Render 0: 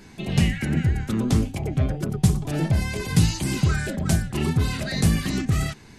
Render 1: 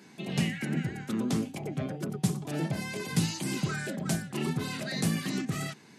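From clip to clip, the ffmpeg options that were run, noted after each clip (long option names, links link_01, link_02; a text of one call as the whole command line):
ffmpeg -i in.wav -af "highpass=frequency=150:width=0.5412,highpass=frequency=150:width=1.3066,volume=-5.5dB" out.wav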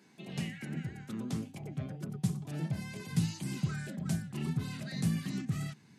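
ffmpeg -i in.wav -af "asubboost=boost=5:cutoff=180,volume=-9dB" out.wav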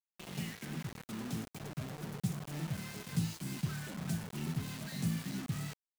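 ffmpeg -i in.wav -af "acrusher=bits=6:mix=0:aa=0.000001,volume=-3.5dB" out.wav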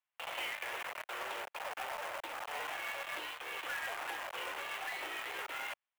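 ffmpeg -i in.wav -af "highpass=frequency=480:width_type=q:width=0.5412,highpass=frequency=480:width_type=q:width=1.307,lowpass=frequency=3000:width_type=q:width=0.5176,lowpass=frequency=3000:width_type=q:width=0.7071,lowpass=frequency=3000:width_type=q:width=1.932,afreqshift=140,acrusher=bits=2:mode=log:mix=0:aa=0.000001,volume=10dB" out.wav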